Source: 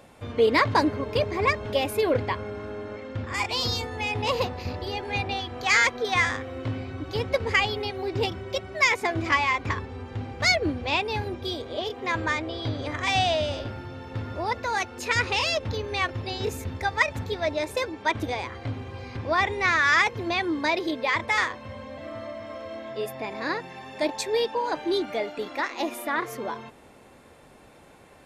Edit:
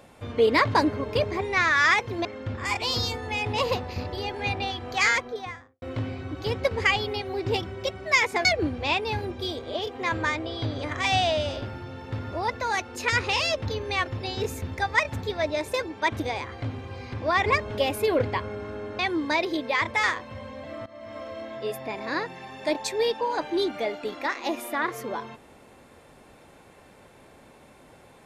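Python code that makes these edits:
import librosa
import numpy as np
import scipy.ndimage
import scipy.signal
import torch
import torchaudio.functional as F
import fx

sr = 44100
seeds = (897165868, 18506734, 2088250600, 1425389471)

y = fx.studio_fade_out(x, sr, start_s=5.61, length_s=0.9)
y = fx.edit(y, sr, fx.swap(start_s=1.41, length_s=1.53, other_s=19.49, other_length_s=0.84),
    fx.cut(start_s=9.14, length_s=1.34),
    fx.fade_in_from(start_s=22.2, length_s=0.3, floor_db=-18.0), tone=tone)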